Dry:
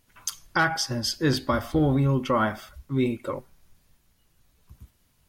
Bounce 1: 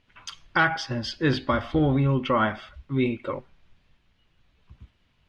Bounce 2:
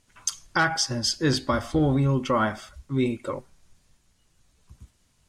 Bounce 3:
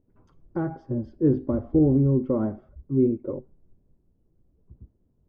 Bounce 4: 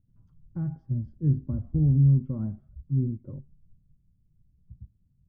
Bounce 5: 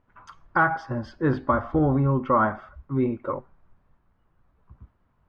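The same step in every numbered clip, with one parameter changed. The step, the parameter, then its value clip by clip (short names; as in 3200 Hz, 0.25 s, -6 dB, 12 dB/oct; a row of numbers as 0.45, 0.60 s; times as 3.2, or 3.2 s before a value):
synth low-pass, frequency: 3000, 8000, 390, 150, 1200 Hz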